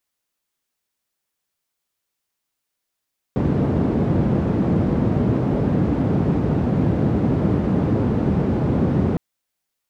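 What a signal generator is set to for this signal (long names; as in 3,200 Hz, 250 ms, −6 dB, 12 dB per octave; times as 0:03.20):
band-limited noise 100–220 Hz, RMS −19 dBFS 5.81 s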